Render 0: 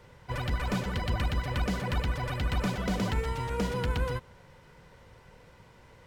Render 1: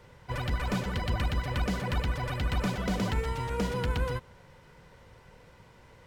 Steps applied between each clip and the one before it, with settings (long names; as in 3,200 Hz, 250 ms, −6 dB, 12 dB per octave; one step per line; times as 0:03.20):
no processing that can be heard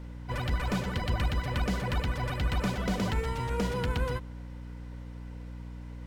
mains hum 60 Hz, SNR 10 dB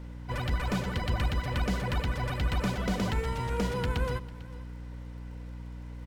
surface crackle 36 per second −54 dBFS
single-tap delay 448 ms −19 dB